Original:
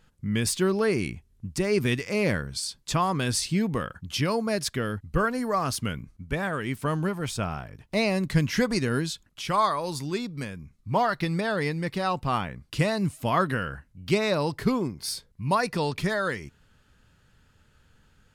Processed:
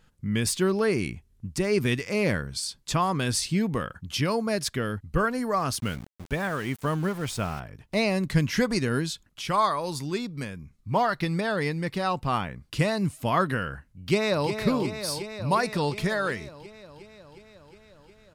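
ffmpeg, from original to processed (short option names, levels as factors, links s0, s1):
-filter_complex "[0:a]asettb=1/sr,asplit=3[s0][s1][s2];[s0]atrim=end=5.804[s3];[s1]atrim=start=5.8:end=7.6,asetpts=PTS-STARTPTS,afade=t=in:d=0.004:c=qsin,afade=t=out:st=1.796:d=0.004:c=qsin,aeval=exprs='val(0)*gte(abs(val(0)),0.0106)':c=same[s4];[s2]atrim=start=7.596[s5];[s3][s4]acrossfade=d=0.004:c1=hsin:c2=qsin[s6];[s6][s5]acrossfade=d=0.004:c1=qsin:c2=hsin,asplit=2[s7][s8];[s8]afade=t=in:st=13.9:d=0.01,afade=t=out:st=14.5:d=0.01,aecho=0:1:360|720|1080|1440|1800|2160|2520|2880|3240|3600|3960|4320:0.421697|0.316272|0.237204|0.177903|0.133427|0.100071|0.0750529|0.0562897|0.0422173|0.0316629|0.0237472|0.0178104[s9];[s7][s9]amix=inputs=2:normalize=0"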